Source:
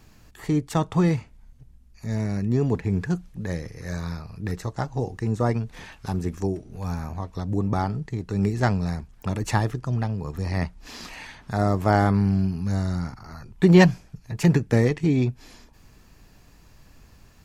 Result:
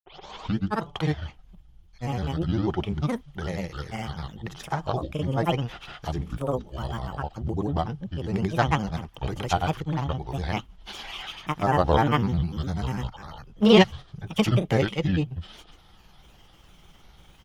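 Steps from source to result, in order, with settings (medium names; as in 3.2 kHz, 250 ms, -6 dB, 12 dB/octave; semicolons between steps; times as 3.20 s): tape start-up on the opening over 0.69 s; granulator 100 ms, pitch spread up and down by 7 st; graphic EQ with 31 bands 100 Hz -7 dB, 250 Hz -7 dB, 800 Hz +7 dB, 1.25 kHz +4 dB, 3.15 kHz +12 dB, 8 kHz -7 dB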